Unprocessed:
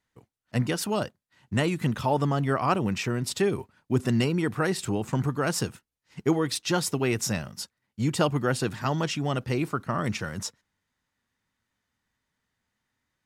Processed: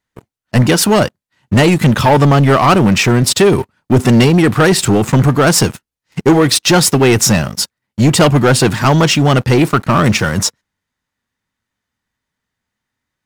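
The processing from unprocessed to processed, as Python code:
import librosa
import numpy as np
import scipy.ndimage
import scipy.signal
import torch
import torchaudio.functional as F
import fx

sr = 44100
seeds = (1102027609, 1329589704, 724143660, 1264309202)

y = fx.leveller(x, sr, passes=3)
y = F.gain(torch.from_numpy(y), 8.0).numpy()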